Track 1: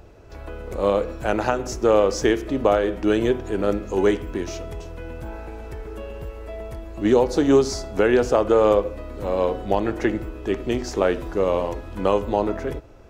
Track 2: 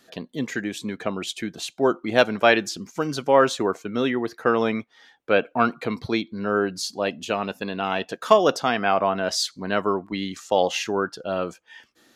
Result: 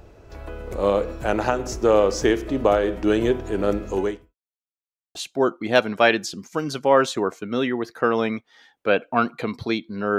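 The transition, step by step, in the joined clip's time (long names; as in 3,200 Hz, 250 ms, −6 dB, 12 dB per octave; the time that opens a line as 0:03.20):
track 1
0:03.94–0:04.35: fade out quadratic
0:04.35–0:05.15: silence
0:05.15: continue with track 2 from 0:01.58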